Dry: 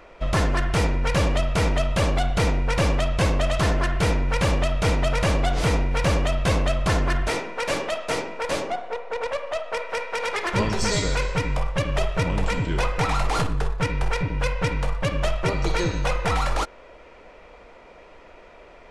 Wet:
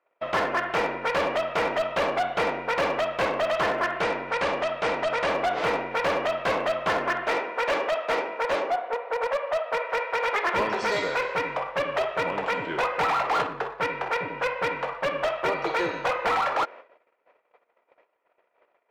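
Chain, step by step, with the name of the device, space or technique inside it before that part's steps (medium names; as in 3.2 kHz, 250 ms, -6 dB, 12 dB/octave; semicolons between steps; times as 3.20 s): walkie-talkie (band-pass 470–2300 Hz; hard clipper -23 dBFS, distortion -15 dB; gate -46 dBFS, range -30 dB); 4.02–5.29 s: elliptic low-pass 9.3 kHz, stop band 40 dB; trim +4 dB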